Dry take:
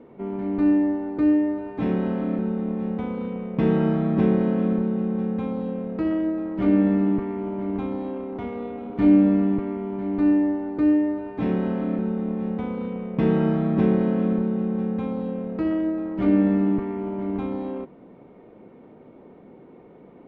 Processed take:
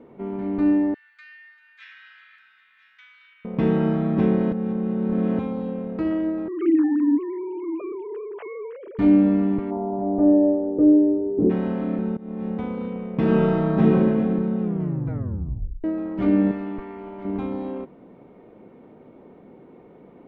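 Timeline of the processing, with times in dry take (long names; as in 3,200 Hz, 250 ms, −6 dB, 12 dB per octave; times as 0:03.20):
0:00.94–0:03.45: elliptic high-pass filter 1,600 Hz, stop band 60 dB
0:04.52–0:05.39: reverse
0:06.48–0:08.99: three sine waves on the formant tracks
0:09.70–0:11.49: low-pass with resonance 800 Hz → 380 Hz
0:12.17–0:12.60: fade in equal-power, from −22 dB
0:13.19–0:13.90: thrown reverb, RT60 1.7 s, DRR −1.5 dB
0:14.61: tape stop 1.23 s
0:16.51–0:17.25: parametric band 170 Hz −11.5 dB 2.9 octaves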